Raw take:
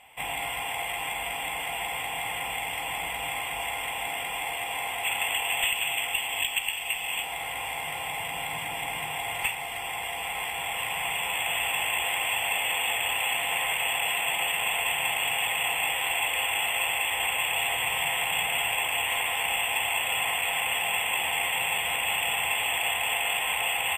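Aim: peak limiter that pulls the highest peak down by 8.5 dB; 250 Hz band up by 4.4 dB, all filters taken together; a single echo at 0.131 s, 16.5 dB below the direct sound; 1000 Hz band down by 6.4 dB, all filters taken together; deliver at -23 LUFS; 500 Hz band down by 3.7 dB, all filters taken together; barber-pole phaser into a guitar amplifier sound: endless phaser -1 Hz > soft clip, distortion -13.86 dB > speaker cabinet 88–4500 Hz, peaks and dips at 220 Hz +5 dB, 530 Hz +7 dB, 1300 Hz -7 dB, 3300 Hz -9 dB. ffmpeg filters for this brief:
-filter_complex "[0:a]equalizer=f=250:t=o:g=6,equalizer=f=500:t=o:g=-7.5,equalizer=f=1k:t=o:g=-5.5,alimiter=limit=-23dB:level=0:latency=1,aecho=1:1:131:0.15,asplit=2[a][b];[b]afreqshift=-1[c];[a][c]amix=inputs=2:normalize=1,asoftclip=threshold=-31.5dB,highpass=88,equalizer=f=220:t=q:w=4:g=5,equalizer=f=530:t=q:w=4:g=7,equalizer=f=1.3k:t=q:w=4:g=-7,equalizer=f=3.3k:t=q:w=4:g=-9,lowpass=f=4.5k:w=0.5412,lowpass=f=4.5k:w=1.3066,volume=16dB"

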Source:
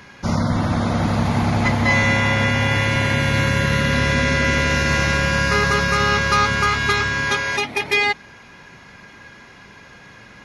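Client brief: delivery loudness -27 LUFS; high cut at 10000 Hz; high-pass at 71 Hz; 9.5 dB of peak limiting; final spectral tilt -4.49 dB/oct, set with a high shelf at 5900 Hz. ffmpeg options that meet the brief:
-af "highpass=71,lowpass=10k,highshelf=f=5.9k:g=3.5,volume=-5dB,alimiter=limit=-19dB:level=0:latency=1"

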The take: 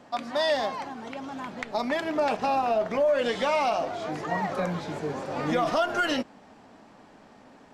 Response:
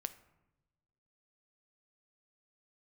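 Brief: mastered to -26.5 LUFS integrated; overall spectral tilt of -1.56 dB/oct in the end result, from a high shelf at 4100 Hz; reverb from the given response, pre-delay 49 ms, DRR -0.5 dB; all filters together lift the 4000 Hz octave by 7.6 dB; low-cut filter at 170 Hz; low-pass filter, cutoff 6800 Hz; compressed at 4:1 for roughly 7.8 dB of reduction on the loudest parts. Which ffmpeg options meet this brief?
-filter_complex "[0:a]highpass=170,lowpass=6.8k,equalizer=f=4k:t=o:g=8.5,highshelf=f=4.1k:g=3,acompressor=threshold=-29dB:ratio=4,asplit=2[a][b];[1:a]atrim=start_sample=2205,adelay=49[c];[b][c]afir=irnorm=-1:irlink=0,volume=2.5dB[d];[a][d]amix=inputs=2:normalize=0,volume=2.5dB"

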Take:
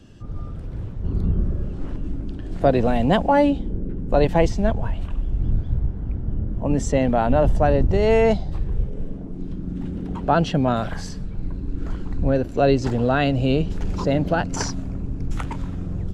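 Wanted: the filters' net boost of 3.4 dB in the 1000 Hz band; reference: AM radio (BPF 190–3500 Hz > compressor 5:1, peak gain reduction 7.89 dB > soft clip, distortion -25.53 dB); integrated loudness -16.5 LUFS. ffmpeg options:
-af "highpass=190,lowpass=3.5k,equalizer=f=1k:t=o:g=5,acompressor=threshold=-18dB:ratio=5,asoftclip=threshold=-9.5dB,volume=10.5dB"

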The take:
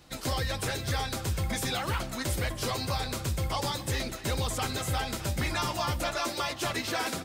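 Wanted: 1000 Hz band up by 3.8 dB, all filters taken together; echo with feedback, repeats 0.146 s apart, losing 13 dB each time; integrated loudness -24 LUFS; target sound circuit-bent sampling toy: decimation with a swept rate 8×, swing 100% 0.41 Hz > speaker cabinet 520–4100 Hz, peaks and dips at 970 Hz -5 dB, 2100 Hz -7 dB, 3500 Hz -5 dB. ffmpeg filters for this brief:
-af "equalizer=f=1k:t=o:g=8.5,aecho=1:1:146|292|438:0.224|0.0493|0.0108,acrusher=samples=8:mix=1:aa=0.000001:lfo=1:lforange=8:lforate=0.41,highpass=520,equalizer=f=970:t=q:w=4:g=-5,equalizer=f=2.1k:t=q:w=4:g=-7,equalizer=f=3.5k:t=q:w=4:g=-5,lowpass=f=4.1k:w=0.5412,lowpass=f=4.1k:w=1.3066,volume=9dB"

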